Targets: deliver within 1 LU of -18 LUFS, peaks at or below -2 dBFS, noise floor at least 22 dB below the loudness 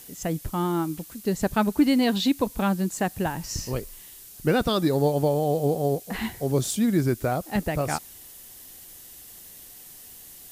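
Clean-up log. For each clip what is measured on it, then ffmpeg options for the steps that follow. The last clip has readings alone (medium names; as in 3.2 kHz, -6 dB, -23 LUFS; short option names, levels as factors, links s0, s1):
noise floor -46 dBFS; noise floor target -48 dBFS; loudness -25.5 LUFS; peak level -10.0 dBFS; loudness target -18.0 LUFS
-> -af "afftdn=nr=6:nf=-46"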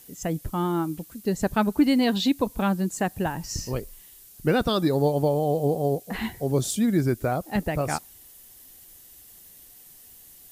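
noise floor -50 dBFS; loudness -25.5 LUFS; peak level -10.0 dBFS; loudness target -18.0 LUFS
-> -af "volume=2.37"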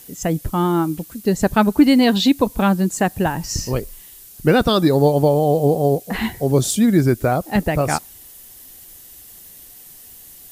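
loudness -18.0 LUFS; peak level -2.5 dBFS; noise floor -42 dBFS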